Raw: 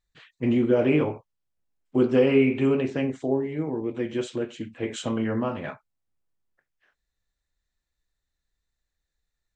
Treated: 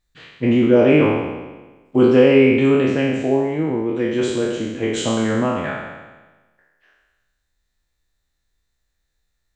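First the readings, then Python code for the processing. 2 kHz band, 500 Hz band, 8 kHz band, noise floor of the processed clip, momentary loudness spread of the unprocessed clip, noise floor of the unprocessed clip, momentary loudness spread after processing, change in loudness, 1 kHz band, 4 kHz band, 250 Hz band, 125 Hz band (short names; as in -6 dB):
+9.5 dB, +8.5 dB, +11.0 dB, -73 dBFS, 12 LU, -83 dBFS, 12 LU, +7.5 dB, +9.5 dB, +10.0 dB, +7.5 dB, +7.0 dB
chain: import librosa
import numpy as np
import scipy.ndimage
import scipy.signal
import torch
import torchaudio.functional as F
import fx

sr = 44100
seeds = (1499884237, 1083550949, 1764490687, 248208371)

y = fx.spec_trails(x, sr, decay_s=1.23)
y = y * 10.0 ** (5.5 / 20.0)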